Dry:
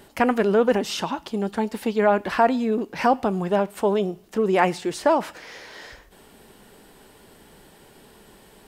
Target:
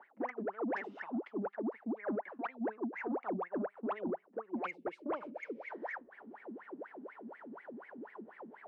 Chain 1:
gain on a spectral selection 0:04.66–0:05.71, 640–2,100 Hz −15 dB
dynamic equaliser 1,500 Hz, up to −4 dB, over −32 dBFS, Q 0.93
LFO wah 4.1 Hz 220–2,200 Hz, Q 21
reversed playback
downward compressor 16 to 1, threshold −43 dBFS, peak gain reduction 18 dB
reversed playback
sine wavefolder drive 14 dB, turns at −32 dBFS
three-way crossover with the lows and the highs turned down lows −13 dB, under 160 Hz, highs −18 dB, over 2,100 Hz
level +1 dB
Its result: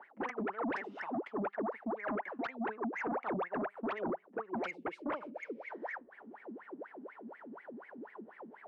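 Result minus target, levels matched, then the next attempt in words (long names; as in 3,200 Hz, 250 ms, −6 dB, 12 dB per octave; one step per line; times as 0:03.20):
downward compressor: peak gain reduction −5.5 dB
gain on a spectral selection 0:04.66–0:05.71, 640–2,100 Hz −15 dB
dynamic equaliser 1,500 Hz, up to −4 dB, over −32 dBFS, Q 0.93
LFO wah 4.1 Hz 220–2,200 Hz, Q 21
reversed playback
downward compressor 16 to 1, threshold −49 dBFS, peak gain reduction 23.5 dB
reversed playback
sine wavefolder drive 14 dB, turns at −32 dBFS
three-way crossover with the lows and the highs turned down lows −13 dB, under 160 Hz, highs −18 dB, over 2,100 Hz
level +1 dB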